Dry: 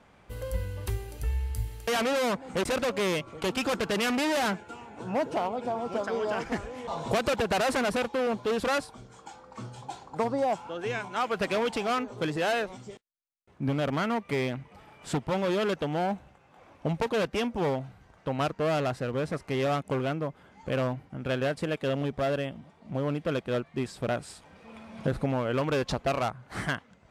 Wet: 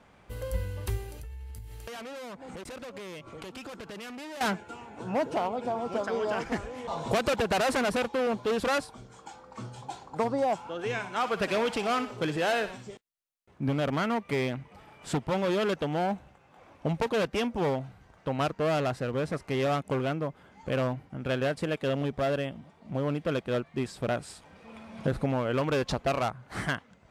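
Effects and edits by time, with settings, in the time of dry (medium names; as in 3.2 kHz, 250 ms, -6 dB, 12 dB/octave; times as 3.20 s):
1.11–4.41 s: compression 16:1, threshold -38 dBFS
10.73–12.91 s: thinning echo 61 ms, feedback 51%, high-pass 1.1 kHz, level -9.5 dB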